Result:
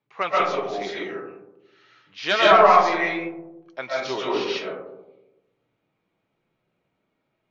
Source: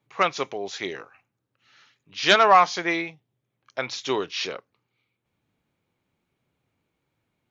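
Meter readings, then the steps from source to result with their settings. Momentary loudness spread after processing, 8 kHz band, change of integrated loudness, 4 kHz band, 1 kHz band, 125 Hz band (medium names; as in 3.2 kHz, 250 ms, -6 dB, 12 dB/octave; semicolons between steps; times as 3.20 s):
21 LU, no reading, +2.0 dB, -1.0 dB, +2.5 dB, +0.5 dB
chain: bass shelf 170 Hz -9 dB; in parallel at -11 dB: saturation -13 dBFS, distortion -12 dB; on the sum: flange 0.28 Hz, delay 4.7 ms, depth 2.4 ms, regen -68%; distance through air 120 m; algorithmic reverb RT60 1 s, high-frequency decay 0.25×, pre-delay 95 ms, DRR -6 dB; trim -1 dB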